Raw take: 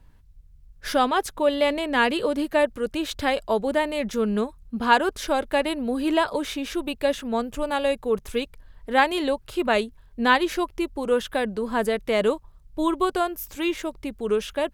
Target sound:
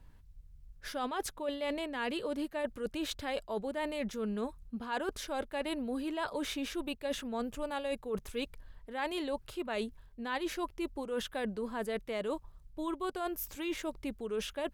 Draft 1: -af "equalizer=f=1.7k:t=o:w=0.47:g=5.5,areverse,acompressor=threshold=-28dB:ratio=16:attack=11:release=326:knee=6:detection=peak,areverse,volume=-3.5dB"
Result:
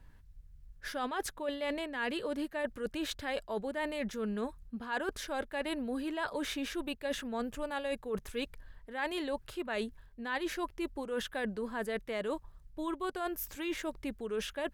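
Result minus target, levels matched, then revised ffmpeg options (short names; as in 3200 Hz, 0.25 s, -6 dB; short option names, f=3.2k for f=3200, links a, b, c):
2000 Hz band +3.0 dB
-af "areverse,acompressor=threshold=-28dB:ratio=16:attack=11:release=326:knee=6:detection=peak,areverse,volume=-3.5dB"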